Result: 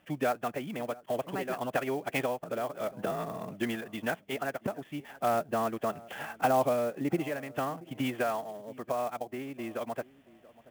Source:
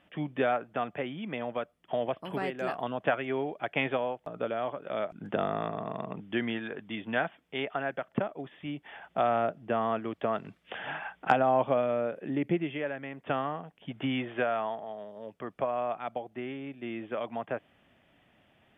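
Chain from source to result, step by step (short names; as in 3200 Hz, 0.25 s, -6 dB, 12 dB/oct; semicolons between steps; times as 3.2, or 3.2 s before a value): time stretch by phase-locked vocoder 0.57×; darkening echo 0.68 s, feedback 25%, low-pass 950 Hz, level -20 dB; clock jitter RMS 0.022 ms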